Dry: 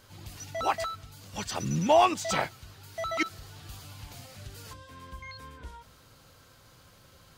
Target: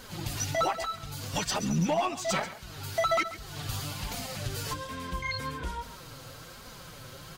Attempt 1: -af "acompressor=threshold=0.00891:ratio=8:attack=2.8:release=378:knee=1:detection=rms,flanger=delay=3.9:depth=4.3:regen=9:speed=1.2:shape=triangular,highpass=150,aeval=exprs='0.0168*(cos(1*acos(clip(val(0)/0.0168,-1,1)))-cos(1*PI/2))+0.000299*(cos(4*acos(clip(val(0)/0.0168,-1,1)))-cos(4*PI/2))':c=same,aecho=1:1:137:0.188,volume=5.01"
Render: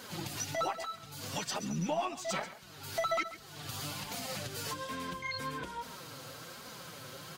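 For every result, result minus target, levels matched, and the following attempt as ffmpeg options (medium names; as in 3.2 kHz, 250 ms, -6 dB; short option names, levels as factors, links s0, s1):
compression: peak gain reduction +6 dB; 125 Hz band -2.5 dB
-af "acompressor=threshold=0.02:ratio=8:attack=2.8:release=378:knee=1:detection=rms,flanger=delay=3.9:depth=4.3:regen=9:speed=1.2:shape=triangular,highpass=150,aeval=exprs='0.0168*(cos(1*acos(clip(val(0)/0.0168,-1,1)))-cos(1*PI/2))+0.000299*(cos(4*acos(clip(val(0)/0.0168,-1,1)))-cos(4*PI/2))':c=same,aecho=1:1:137:0.188,volume=5.01"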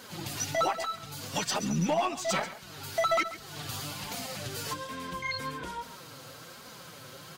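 125 Hz band -3.5 dB
-af "acompressor=threshold=0.02:ratio=8:attack=2.8:release=378:knee=1:detection=rms,flanger=delay=3.9:depth=4.3:regen=9:speed=1.2:shape=triangular,aeval=exprs='0.0168*(cos(1*acos(clip(val(0)/0.0168,-1,1)))-cos(1*PI/2))+0.000299*(cos(4*acos(clip(val(0)/0.0168,-1,1)))-cos(4*PI/2))':c=same,aecho=1:1:137:0.188,volume=5.01"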